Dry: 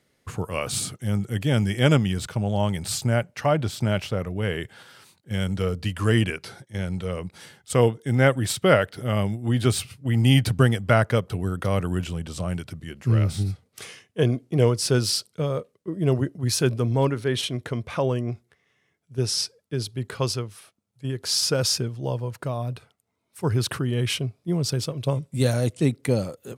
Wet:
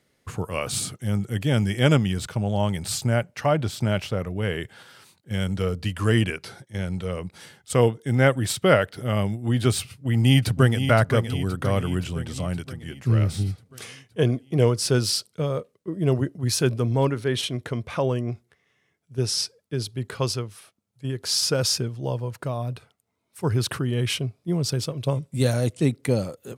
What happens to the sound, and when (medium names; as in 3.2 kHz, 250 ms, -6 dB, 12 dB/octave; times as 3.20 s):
9.90–10.79 s: echo throw 520 ms, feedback 60%, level -8.5 dB